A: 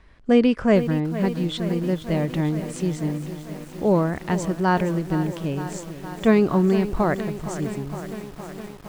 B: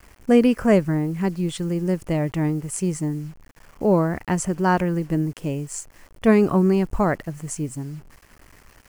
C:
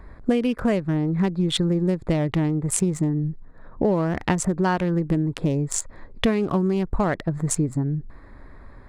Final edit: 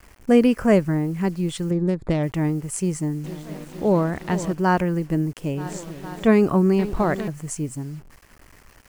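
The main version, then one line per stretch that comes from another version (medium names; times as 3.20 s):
B
1.71–2.23 s: from C
3.24–4.53 s: from A
5.58–6.28 s: from A, crossfade 0.16 s
6.79–7.28 s: from A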